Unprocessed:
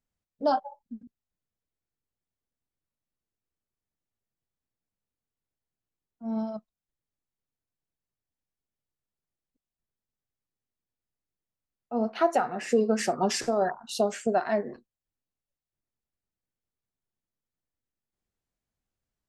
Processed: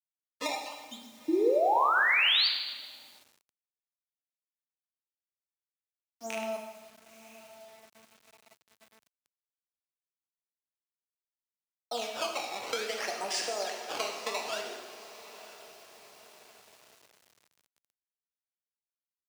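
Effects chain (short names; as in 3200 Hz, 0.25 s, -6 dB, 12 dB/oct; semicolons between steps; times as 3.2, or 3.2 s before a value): rattling part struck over -31 dBFS, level -27 dBFS; decimation with a swept rate 16×, swing 160% 0.58 Hz; three-band isolator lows -22 dB, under 360 Hz, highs -19 dB, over 6300 Hz; compressor 6:1, threshold -40 dBFS, peak gain reduction 21 dB; high shelf 3300 Hz +12 dB; diffused feedback echo 0.974 s, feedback 47%, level -15 dB; painted sound rise, 1.28–2.48, 310–4800 Hz -31 dBFS; plate-style reverb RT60 1.4 s, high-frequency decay 0.95×, DRR 2 dB; requantised 10-bit, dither none; HPF 86 Hz 12 dB/oct; gain +4.5 dB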